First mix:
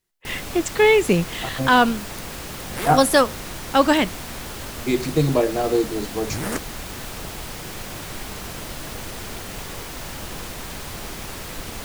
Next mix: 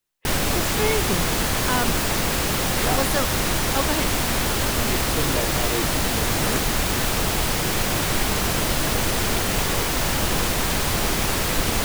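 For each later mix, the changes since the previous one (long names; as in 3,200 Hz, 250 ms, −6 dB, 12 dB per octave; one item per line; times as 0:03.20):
speech −10.0 dB
first sound +11.0 dB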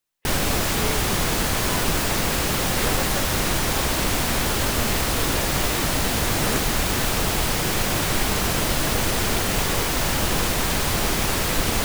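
speech −9.0 dB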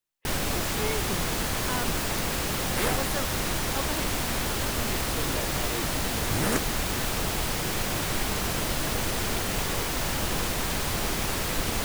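first sound −6.0 dB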